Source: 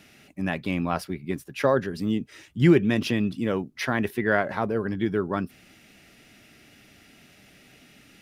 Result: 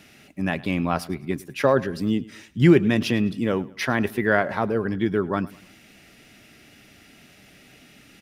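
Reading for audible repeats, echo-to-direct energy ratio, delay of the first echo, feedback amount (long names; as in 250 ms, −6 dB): 2, −20.0 dB, 105 ms, 37%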